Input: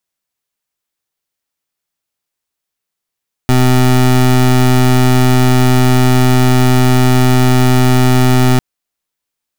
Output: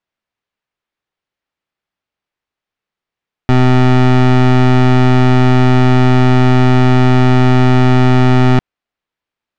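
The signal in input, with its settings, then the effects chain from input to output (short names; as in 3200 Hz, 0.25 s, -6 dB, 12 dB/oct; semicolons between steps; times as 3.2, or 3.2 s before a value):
pulse 127 Hz, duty 24% -8.5 dBFS 5.10 s
LPF 2900 Hz 12 dB/oct; in parallel at -11.5 dB: soft clip -20.5 dBFS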